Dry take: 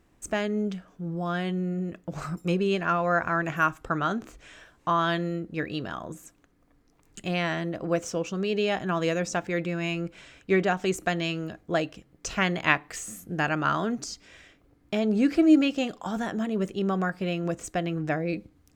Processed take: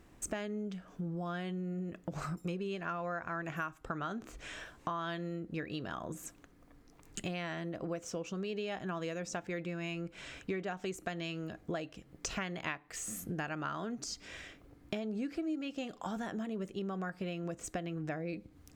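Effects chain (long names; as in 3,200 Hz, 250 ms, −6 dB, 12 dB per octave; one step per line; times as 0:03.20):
downward compressor 6 to 1, threshold −40 dBFS, peak gain reduction 24 dB
level +3.5 dB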